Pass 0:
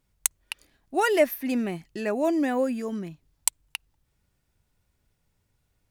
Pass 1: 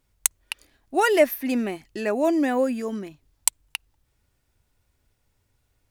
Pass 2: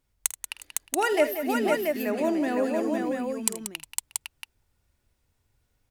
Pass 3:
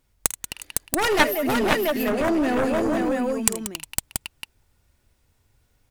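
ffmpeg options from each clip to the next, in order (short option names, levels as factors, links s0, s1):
-af "equalizer=f=170:w=5.6:g=-14,volume=1.41"
-af "aecho=1:1:48|80|184|360|508|682:0.158|0.158|0.299|0.1|0.631|0.562,volume=0.562"
-af "aeval=exprs='0.501*(cos(1*acos(clip(val(0)/0.501,-1,1)))-cos(1*PI/2))+0.0501*(cos(6*acos(clip(val(0)/0.501,-1,1)))-cos(6*PI/2))+0.178*(cos(7*acos(clip(val(0)/0.501,-1,1)))-cos(7*PI/2))':c=same,volume=1.5"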